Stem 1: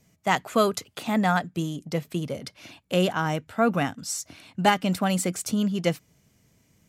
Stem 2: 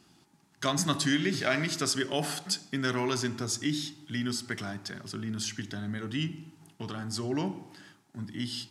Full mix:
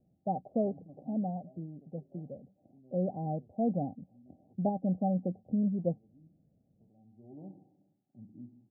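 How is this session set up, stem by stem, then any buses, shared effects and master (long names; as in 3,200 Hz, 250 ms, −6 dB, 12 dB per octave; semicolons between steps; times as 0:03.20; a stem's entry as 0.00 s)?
0:00.74 −4.5 dB → 0:01.50 −11 dB → 0:02.79 −11 dB → 0:03.14 −4.5 dB, 0.00 s, no send, no processing
−11.5 dB, 0.00 s, no send, automatic ducking −14 dB, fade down 1.55 s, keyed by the first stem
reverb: not used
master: Chebyshev low-pass with heavy ripple 800 Hz, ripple 6 dB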